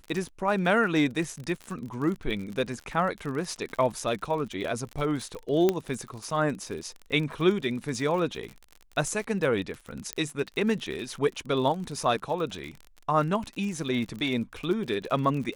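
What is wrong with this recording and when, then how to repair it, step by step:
crackle 49 per s -33 dBFS
5.69 s: pop -10 dBFS
10.13 s: pop -13 dBFS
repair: de-click

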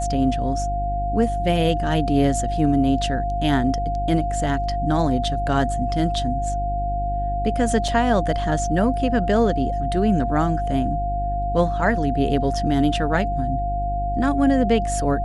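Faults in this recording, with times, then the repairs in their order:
hum 50 Hz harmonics 7 -26 dBFS
whine 700 Hz -24 dBFS
7.88 s: dropout 3.6 ms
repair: de-hum 50 Hz, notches 7; band-stop 700 Hz, Q 30; interpolate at 7.88 s, 3.6 ms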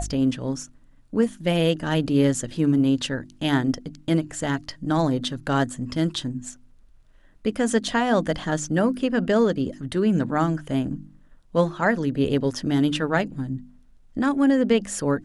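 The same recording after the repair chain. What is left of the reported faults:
nothing left

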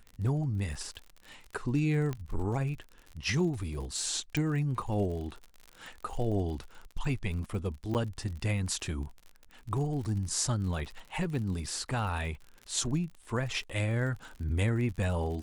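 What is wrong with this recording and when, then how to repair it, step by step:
crackle 52 per s -39 dBFS
2.13 s: pop -22 dBFS
4.37 s: pop -19 dBFS
7.94–7.95 s: dropout 8.7 ms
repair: de-click; interpolate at 7.94 s, 8.7 ms

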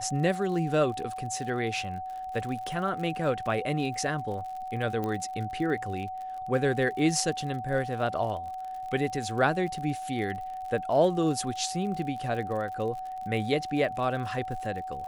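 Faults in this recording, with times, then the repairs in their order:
crackle 52 per s -37 dBFS
whine 750 Hz -34 dBFS
5.04 s: pop -20 dBFS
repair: de-click; band-stop 750 Hz, Q 30

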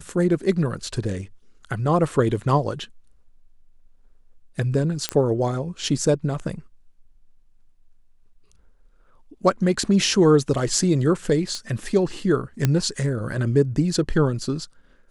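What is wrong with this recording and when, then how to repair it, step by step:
5.09 s: pop -6 dBFS
11.55 s: pop -18 dBFS
12.65 s: pop -6 dBFS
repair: de-click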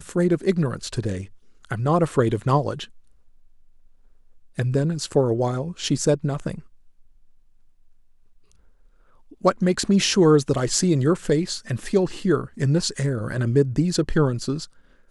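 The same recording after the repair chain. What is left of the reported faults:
nothing left

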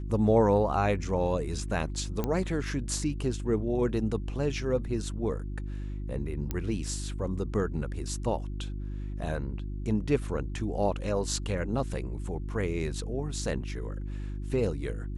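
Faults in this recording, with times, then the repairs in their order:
hum 50 Hz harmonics 7 -35 dBFS
2.24 s: pop -16 dBFS
6.51 s: pop -17 dBFS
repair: de-click; de-hum 50 Hz, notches 7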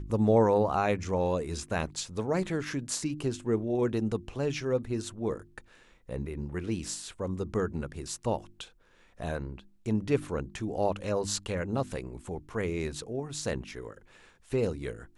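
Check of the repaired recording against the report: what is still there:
nothing left

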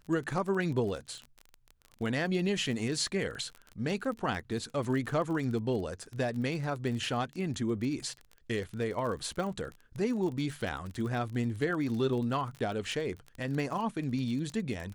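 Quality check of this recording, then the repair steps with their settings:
crackle 28 per s -36 dBFS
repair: de-click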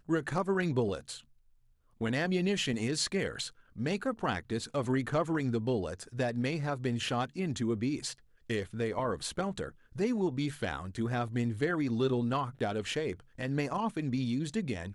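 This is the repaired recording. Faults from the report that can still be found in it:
nothing left

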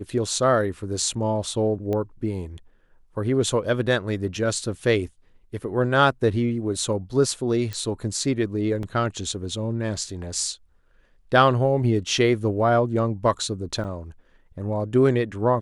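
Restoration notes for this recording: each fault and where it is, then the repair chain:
1.93 s: pop -17 dBFS
7.73 s: pop
8.83 s: dropout 2.1 ms
13.84–13.85 s: dropout 6.2 ms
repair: de-click; interpolate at 8.83 s, 2.1 ms; interpolate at 13.84 s, 6.2 ms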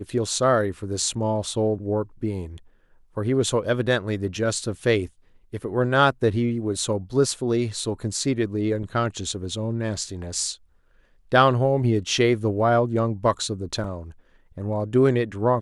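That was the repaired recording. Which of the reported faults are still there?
nothing left

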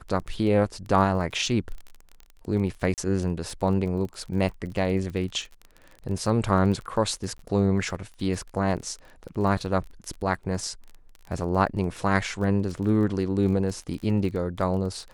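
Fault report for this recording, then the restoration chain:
crackle 22 per s -33 dBFS
2.94–2.98 s: dropout 38 ms
7.38–7.39 s: dropout 13 ms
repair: de-click; interpolate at 2.94 s, 38 ms; interpolate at 7.38 s, 13 ms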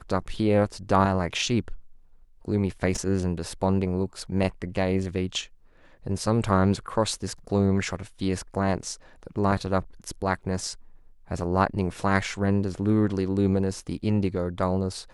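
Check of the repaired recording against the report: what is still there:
nothing left

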